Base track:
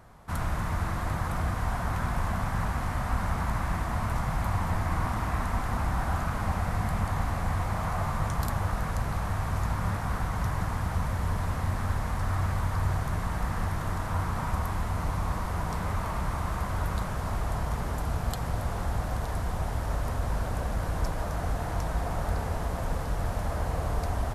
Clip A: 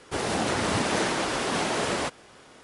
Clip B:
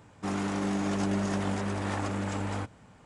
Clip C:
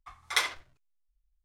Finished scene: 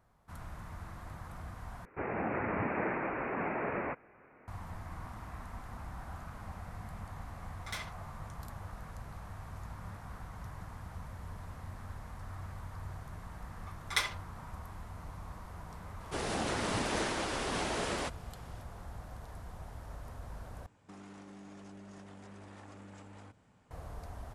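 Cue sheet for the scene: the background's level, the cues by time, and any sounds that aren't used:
base track -16 dB
1.85 s: replace with A -7.5 dB + steep low-pass 2.5 kHz 96 dB/octave
7.36 s: add C -10.5 dB + saturation -23.5 dBFS
13.60 s: add C -5 dB + comb 5 ms, depth 33%
16.00 s: add A -8 dB
20.66 s: replace with B -11 dB + compression 10:1, threshold -36 dBFS

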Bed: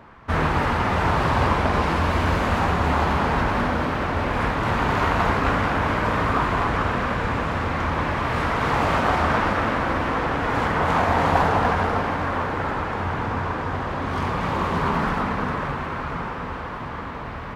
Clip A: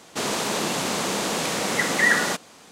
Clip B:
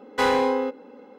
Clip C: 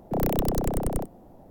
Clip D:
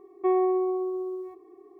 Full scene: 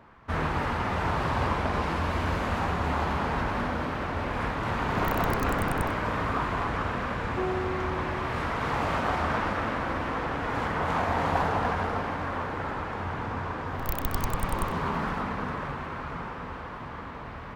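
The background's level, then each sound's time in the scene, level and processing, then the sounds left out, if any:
bed -7 dB
4.85 s: add C -1.5 dB + compression, threshold -27 dBFS
7.13 s: add D -8 dB
13.66 s: add C -2 dB + inverse Chebyshev band-stop 190–1200 Hz
not used: A, B

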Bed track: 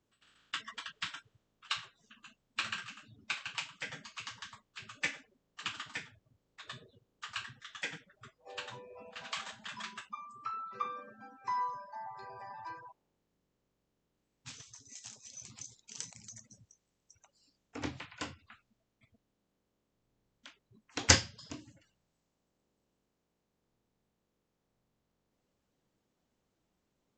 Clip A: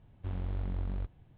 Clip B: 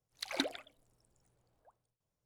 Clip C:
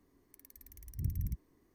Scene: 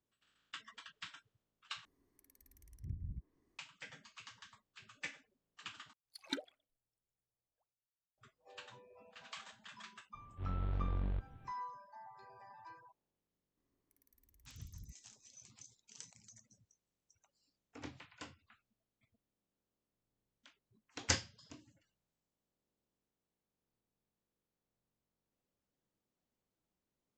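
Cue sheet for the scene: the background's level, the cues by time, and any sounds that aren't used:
bed track -10 dB
1.85 s: replace with C -8.5 dB + low-pass that closes with the level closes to 770 Hz, closed at -31 dBFS
5.93 s: replace with B -5.5 dB + spectral noise reduction 18 dB
10.14 s: add A -1 dB + transient shaper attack -11 dB, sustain +2 dB
13.57 s: add C -16.5 dB

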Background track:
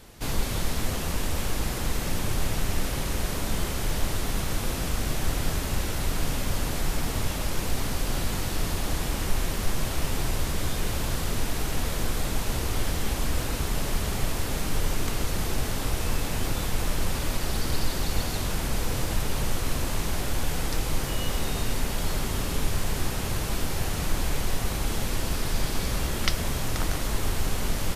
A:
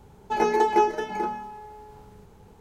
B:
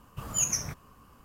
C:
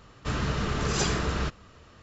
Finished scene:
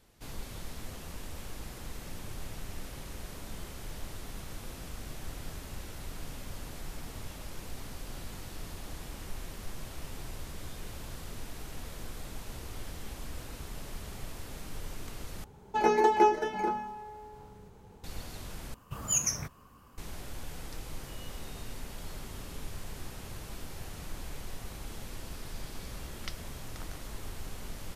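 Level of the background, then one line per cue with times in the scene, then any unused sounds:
background track -14.5 dB
15.44 s: replace with A -2.5 dB
18.74 s: replace with B -1 dB
not used: C

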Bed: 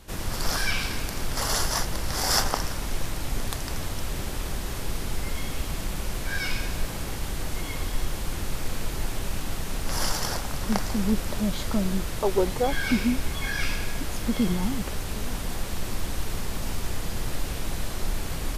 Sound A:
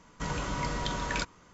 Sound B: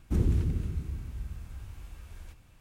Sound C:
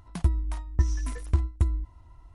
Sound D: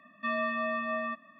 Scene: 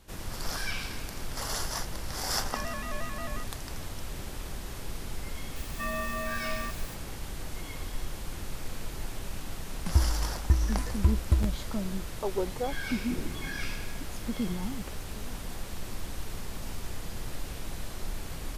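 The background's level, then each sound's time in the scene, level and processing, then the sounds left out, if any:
bed -7.5 dB
2.29 s: add D -7.5 dB + vibrato with a chosen wave square 5.6 Hz, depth 100 cents
5.56 s: add D -3.5 dB + zero-crossing glitches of -33 dBFS
9.71 s: add C -0.5 dB + crackling interface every 0.53 s repeat
12.98 s: add B -3.5 dB + high-pass 230 Hz
not used: A

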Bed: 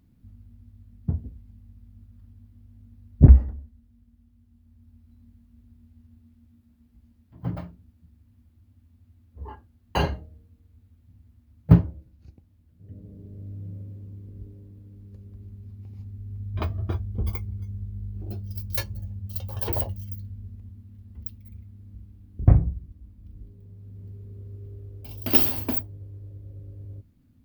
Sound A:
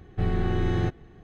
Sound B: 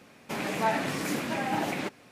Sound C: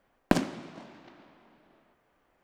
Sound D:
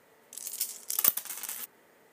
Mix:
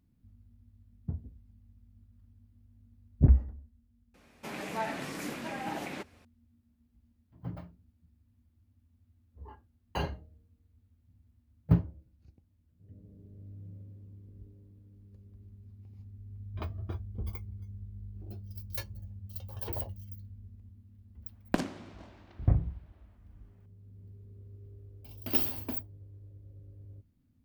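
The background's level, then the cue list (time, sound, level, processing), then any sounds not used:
bed -9.5 dB
4.14 s: add B -7.5 dB
21.23 s: add C -6 dB
not used: A, D

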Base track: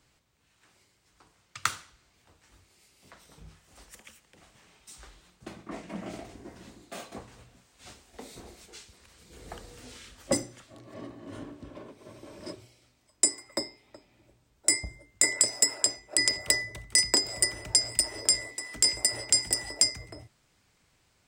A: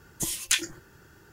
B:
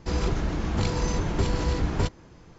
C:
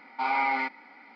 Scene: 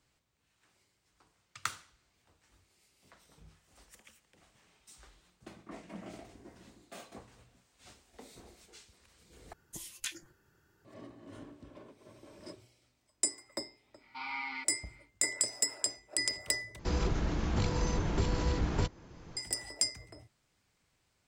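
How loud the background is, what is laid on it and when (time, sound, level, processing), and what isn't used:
base track -7.5 dB
9.53 s: replace with A -15 dB
13.96 s: add C -13.5 dB, fades 0.10 s + FFT filter 330 Hz 0 dB, 540 Hz -23 dB, 1 kHz +2 dB, 1.6 kHz -1 dB, 2.9 kHz +9 dB
16.79 s: replace with B -5.5 dB + three bands compressed up and down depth 40%

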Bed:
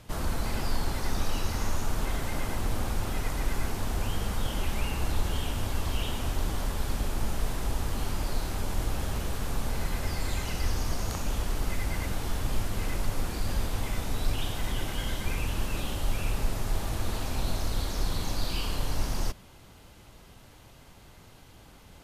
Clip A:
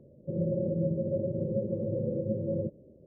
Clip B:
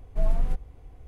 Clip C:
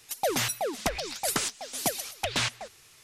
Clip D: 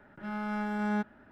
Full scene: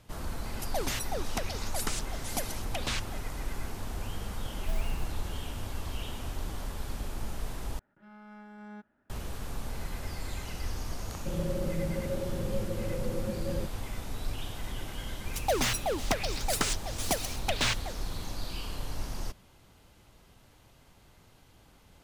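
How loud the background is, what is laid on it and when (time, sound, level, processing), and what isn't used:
bed -6.5 dB
0.51 s: add C -6.5 dB
4.50 s: add B -10.5 dB + sampling jitter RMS 0.079 ms
7.79 s: replace with D -16 dB
10.98 s: add A -4 dB
15.25 s: add C -0.5 dB + median filter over 3 samples

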